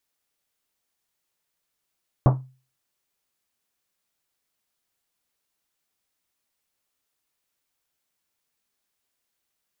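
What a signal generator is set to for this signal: Risset drum, pitch 130 Hz, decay 0.37 s, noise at 640 Hz, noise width 970 Hz, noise 25%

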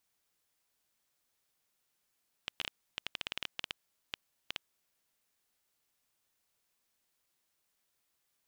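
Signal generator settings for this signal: random clicks 8.7 per s -17.5 dBFS 2.29 s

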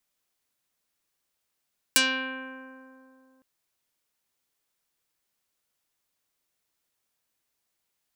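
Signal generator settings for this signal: plucked string C4, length 1.46 s, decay 2.84 s, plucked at 0.41, dark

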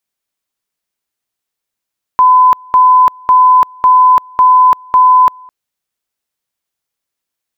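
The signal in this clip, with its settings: two-level tone 1.01 kHz -3 dBFS, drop 29 dB, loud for 0.34 s, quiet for 0.21 s, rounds 6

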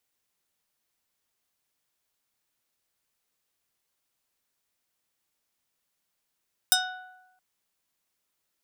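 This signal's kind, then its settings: plucked string F#5, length 0.67 s, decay 1.01 s, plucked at 0.34, medium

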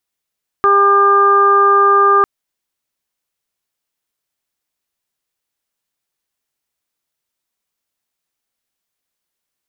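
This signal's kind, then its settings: steady additive tone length 1.60 s, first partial 400 Hz, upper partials -7/6/-8 dB, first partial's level -14.5 dB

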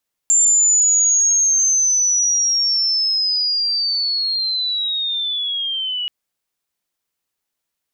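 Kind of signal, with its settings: sweep linear 7.3 kHz -> 2.9 kHz -10.5 dBFS -> -20.5 dBFS 5.78 s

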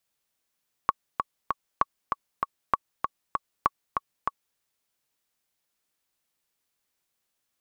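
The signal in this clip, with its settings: metronome 195 bpm, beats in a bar 3, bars 4, 1.12 kHz, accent 5 dB -7 dBFS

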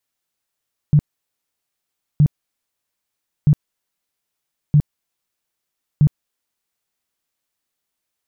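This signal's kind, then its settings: tone bursts 148 Hz, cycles 9, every 1.27 s, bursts 5, -8 dBFS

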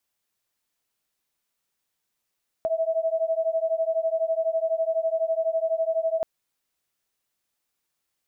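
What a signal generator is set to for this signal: beating tones 645 Hz, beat 12 Hz, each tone -25 dBFS 3.58 s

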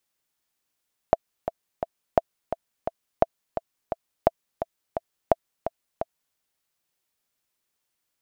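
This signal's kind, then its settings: metronome 172 bpm, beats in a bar 3, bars 5, 665 Hz, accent 10 dB -3 dBFS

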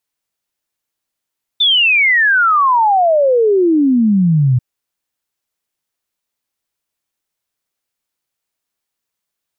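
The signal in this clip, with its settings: log sweep 3.6 kHz -> 120 Hz 2.99 s -8.5 dBFS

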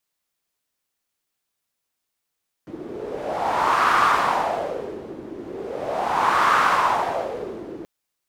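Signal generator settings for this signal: wind-like swept noise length 5.18 s, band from 330 Hz, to 1.2 kHz, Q 3.9, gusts 2, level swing 18 dB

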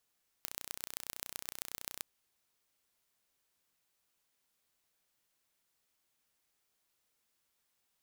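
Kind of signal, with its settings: pulse train 30.8 per s, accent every 4, -10 dBFS 1.58 s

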